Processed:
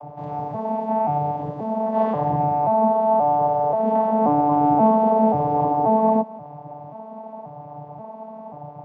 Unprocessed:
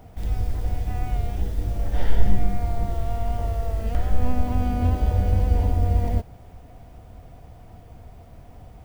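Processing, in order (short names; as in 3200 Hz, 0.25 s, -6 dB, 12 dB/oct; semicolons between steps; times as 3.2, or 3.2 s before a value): arpeggiated vocoder bare fifth, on D3, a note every 0.532 s; LPF 1900 Hz 6 dB/oct; band shelf 790 Hz +14 dB 1.3 oct; gain +7.5 dB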